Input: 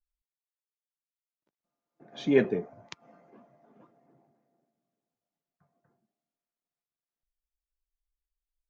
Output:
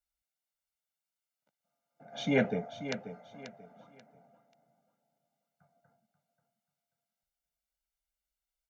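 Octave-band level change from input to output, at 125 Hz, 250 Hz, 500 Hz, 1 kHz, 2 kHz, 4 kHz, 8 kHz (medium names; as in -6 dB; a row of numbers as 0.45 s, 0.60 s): +1.0 dB, -3.0 dB, -5.5 dB, +5.0 dB, +1.0 dB, +2.5 dB, no reading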